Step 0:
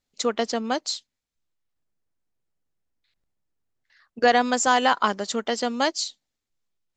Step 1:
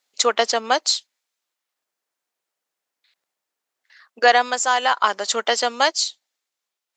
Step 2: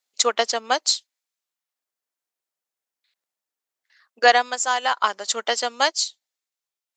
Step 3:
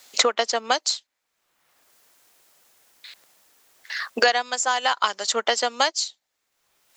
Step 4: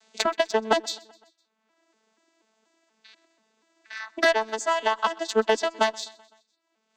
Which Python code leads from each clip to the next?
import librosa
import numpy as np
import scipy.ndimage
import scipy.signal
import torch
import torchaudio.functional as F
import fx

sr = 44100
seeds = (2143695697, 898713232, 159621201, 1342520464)

y1 = scipy.signal.sosfilt(scipy.signal.butter(2, 620.0, 'highpass', fs=sr, output='sos'), x)
y1 = fx.rider(y1, sr, range_db=10, speed_s=0.5)
y1 = y1 * librosa.db_to_amplitude(5.5)
y2 = fx.high_shelf(y1, sr, hz=5800.0, db=5.5)
y2 = fx.upward_expand(y2, sr, threshold_db=-28.0, expansion=1.5)
y3 = fx.band_squash(y2, sr, depth_pct=100)
y3 = y3 * librosa.db_to_amplitude(-1.0)
y4 = fx.vocoder_arp(y3, sr, chord='bare fifth', root=57, every_ms=241)
y4 = fx.cheby_harmonics(y4, sr, harmonics=(2, 7), levels_db=(-28, -28), full_scale_db=-7.5)
y4 = fx.echo_feedback(y4, sr, ms=127, feedback_pct=57, wet_db=-24)